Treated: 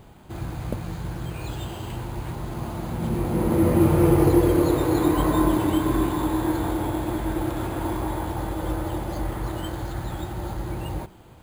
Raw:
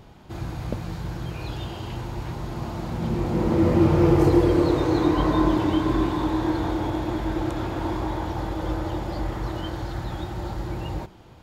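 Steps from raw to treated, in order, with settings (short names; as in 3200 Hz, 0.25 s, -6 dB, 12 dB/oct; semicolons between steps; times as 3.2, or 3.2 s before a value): careless resampling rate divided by 4×, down filtered, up hold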